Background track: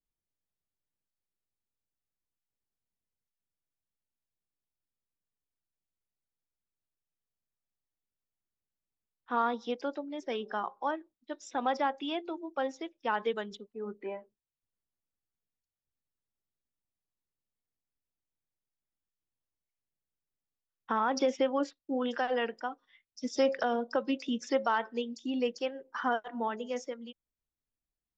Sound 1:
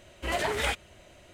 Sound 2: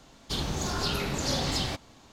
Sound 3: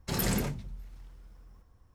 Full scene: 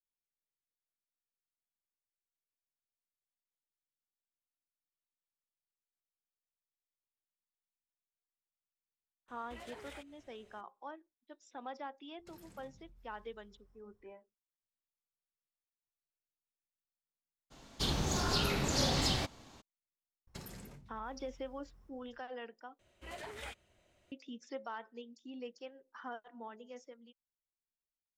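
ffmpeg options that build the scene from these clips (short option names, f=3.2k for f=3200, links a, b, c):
-filter_complex "[1:a]asplit=2[a][b];[3:a]asplit=2[c][d];[0:a]volume=-14.5dB[e];[a]acompressor=threshold=-33dB:ratio=3:attack=0.25:release=306:knee=1:detection=peak[f];[c]acompressor=threshold=-42dB:ratio=6:attack=3.2:release=140:knee=1:detection=peak[g];[d]acompressor=threshold=-44dB:ratio=4:attack=61:release=586:knee=1:detection=peak[h];[e]asplit=2[i][j];[i]atrim=end=22.794[k];[b]atrim=end=1.33,asetpts=PTS-STARTPTS,volume=-17.5dB[l];[j]atrim=start=24.116[m];[f]atrim=end=1.33,asetpts=PTS-STARTPTS,volume=-13.5dB,afade=t=in:d=0.004:c=hsin,afade=t=out:st=1.326:d=0.004:c=hsin,adelay=9280[n];[g]atrim=end=1.94,asetpts=PTS-STARTPTS,volume=-15dB,afade=t=in:d=0.004:c=hsin,afade=t=out:st=1.936:d=0.004:c=hsin,adelay=12190[o];[2:a]atrim=end=2.12,asetpts=PTS-STARTPTS,volume=-2.5dB,afade=t=in:d=0.02,afade=t=out:st=2.1:d=0.02,adelay=17500[p];[h]atrim=end=1.94,asetpts=PTS-STARTPTS,volume=-8dB,afade=t=in:d=0.004:c=hsin,afade=t=out:st=1.936:d=0.004:c=hsin,adelay=20270[q];[k][l]acrossfade=d=0.004:c1=hsin:c2=hsin[r];[r][m]acrossfade=d=0.004:c1=hsin:c2=hsin[s];[s][n][o][p][q]amix=inputs=5:normalize=0"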